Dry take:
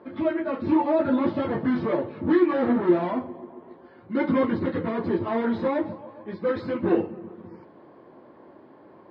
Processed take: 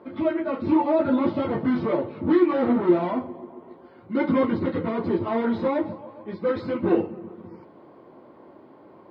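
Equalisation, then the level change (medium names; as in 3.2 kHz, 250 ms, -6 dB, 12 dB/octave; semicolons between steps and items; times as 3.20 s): band-stop 1.7 kHz, Q 8.7; +1.0 dB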